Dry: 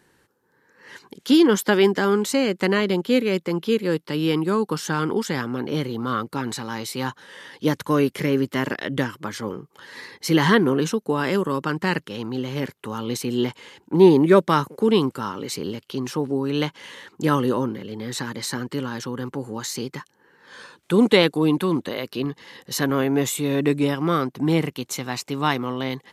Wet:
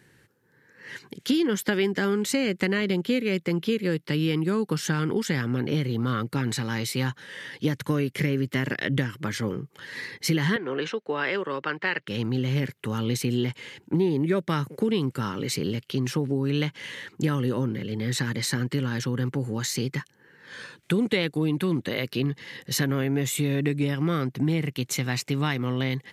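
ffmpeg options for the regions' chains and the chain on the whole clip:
ffmpeg -i in.wav -filter_complex "[0:a]asettb=1/sr,asplit=3[link_01][link_02][link_03];[link_01]atrim=end=10.564[link_04];[link_02]atrim=start=10.56:end=12.08,asetpts=PTS-STARTPTS,afade=type=in:duration=0.004:curve=qsin,afade=type=out:start_time=1.516:duration=0.004:curve=qsin,lowpass=7700,acrossover=split=400 4300:gain=0.0891 1 0.1[link_05][link_06][link_07];[link_05][link_06][link_07]amix=inputs=3:normalize=0[link_08];[link_03]atrim=start=12.076[link_09];[link_04][link_08]acrossfade=duration=0.004:curve1=hsin:curve2=qsin[link_10];[link_10][link_09]acrossfade=duration=0.004:curve1=qsin:curve2=hsin,equalizer=frequency=125:width_type=o:width=1:gain=9,equalizer=frequency=1000:width_type=o:width=1:gain=-7,equalizer=frequency=2000:width_type=o:width=1:gain=6,acompressor=threshold=-21dB:ratio=6" out.wav

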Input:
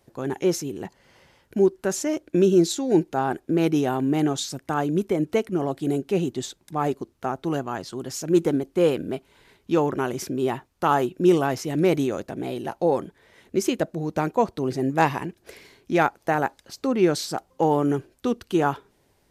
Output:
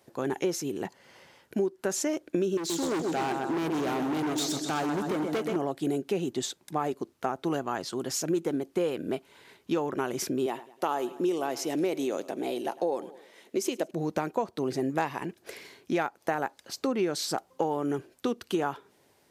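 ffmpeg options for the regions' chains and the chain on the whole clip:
ffmpeg -i in.wav -filter_complex "[0:a]asettb=1/sr,asplit=3[link_01][link_02][link_03];[link_01]atrim=end=2.574[link_04];[link_02]atrim=start=2.57:end=5.56,asetpts=PTS-STARTPTS,afade=type=in:duration=0.004:curve=qsin,afade=type=out:start_time=2.986:duration=0.004:curve=qsin,aecho=1:1:127|254|381|508|635|762|889:0.376|0.222|0.131|0.0772|0.0455|0.0269|0.0159,atrim=end_sample=131859,asoftclip=type=hard:threshold=-24.5dB[link_05];[link_03]atrim=start=5.556[link_06];[link_04][link_05]acrossfade=duration=0.004:curve1=hsin:curve2=qsin[link_07];[link_07][link_06]acrossfade=duration=0.004:curve1=qsin:curve2=hsin,asettb=1/sr,asplit=3[link_08][link_09][link_10];[link_08]atrim=end=10.464[link_11];[link_09]atrim=start=10.46:end=13.91,asetpts=PTS-STARTPTS,afade=type=in:duration=0.004:curve=qsin,afade=type=out:start_time=3.446:duration=0.004:curve=qsin,highpass=270,equalizer=frequency=1500:width_type=o:width=1.1:gain=-5.5,aecho=1:1:104|208|312:0.0944|0.0387|0.0159,atrim=end_sample=152145[link_12];[link_10]atrim=start=13.906[link_13];[link_11][link_12]acrossfade=duration=0.004:curve1=hsin:curve2=qsin[link_14];[link_14][link_13]acrossfade=duration=0.004:curve1=qsin:curve2=hsin,highpass=74,lowshelf=frequency=140:gain=-11.5,acompressor=threshold=-27dB:ratio=6,volume=2dB" out.wav

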